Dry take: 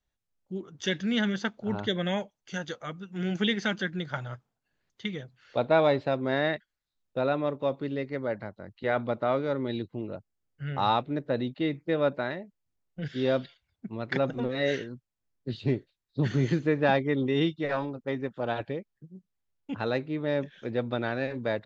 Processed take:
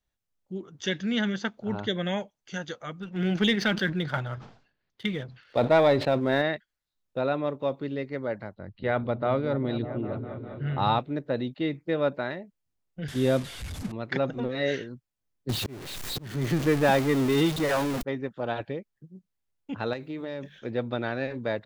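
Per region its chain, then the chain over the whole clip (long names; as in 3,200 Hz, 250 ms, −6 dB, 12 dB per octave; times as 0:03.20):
0:03.00–0:06.42: low-pass filter 5,200 Hz 24 dB per octave + leveller curve on the samples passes 1 + level that may fall only so fast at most 110 dB per second
0:08.54–0:10.99: low-pass filter 4,900 Hz 24 dB per octave + low-shelf EQ 120 Hz +11 dB + echo whose low-pass opens from repeat to repeat 201 ms, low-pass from 200 Hz, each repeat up 1 octave, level −6 dB
0:13.08–0:13.92: linear delta modulator 64 kbit/s, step −36 dBFS + low-shelf EQ 200 Hz +10.5 dB
0:15.49–0:18.03: converter with a step at zero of −26 dBFS + volume swells 450 ms
0:19.93–0:20.59: high-shelf EQ 5,700 Hz +11 dB + mains-hum notches 50/100/150/200 Hz + downward compressor 10 to 1, threshold −30 dBFS
whole clip: no processing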